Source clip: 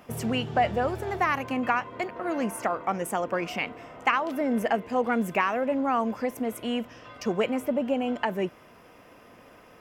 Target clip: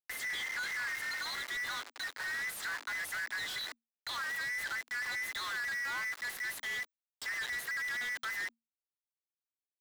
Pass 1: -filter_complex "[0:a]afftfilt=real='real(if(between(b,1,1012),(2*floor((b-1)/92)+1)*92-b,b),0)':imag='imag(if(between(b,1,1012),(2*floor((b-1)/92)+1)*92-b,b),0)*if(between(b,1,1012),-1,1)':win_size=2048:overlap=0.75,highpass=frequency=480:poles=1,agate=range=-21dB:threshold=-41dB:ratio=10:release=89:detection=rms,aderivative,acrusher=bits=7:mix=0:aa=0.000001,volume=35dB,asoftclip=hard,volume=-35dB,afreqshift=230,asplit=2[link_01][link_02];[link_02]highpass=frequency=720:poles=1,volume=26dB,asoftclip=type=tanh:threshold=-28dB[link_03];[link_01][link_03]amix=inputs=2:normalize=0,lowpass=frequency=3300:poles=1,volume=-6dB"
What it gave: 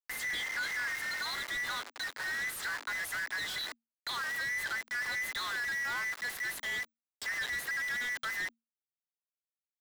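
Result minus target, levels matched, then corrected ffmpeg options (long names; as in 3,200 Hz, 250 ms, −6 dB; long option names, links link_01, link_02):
gain into a clipping stage and back: distortion −7 dB
-filter_complex "[0:a]afftfilt=real='real(if(between(b,1,1012),(2*floor((b-1)/92)+1)*92-b,b),0)':imag='imag(if(between(b,1,1012),(2*floor((b-1)/92)+1)*92-b,b),0)*if(between(b,1,1012),-1,1)':win_size=2048:overlap=0.75,highpass=frequency=480:poles=1,agate=range=-21dB:threshold=-41dB:ratio=10:release=89:detection=rms,aderivative,acrusher=bits=7:mix=0:aa=0.000001,volume=46.5dB,asoftclip=hard,volume=-46.5dB,afreqshift=230,asplit=2[link_01][link_02];[link_02]highpass=frequency=720:poles=1,volume=26dB,asoftclip=type=tanh:threshold=-28dB[link_03];[link_01][link_03]amix=inputs=2:normalize=0,lowpass=frequency=3300:poles=1,volume=-6dB"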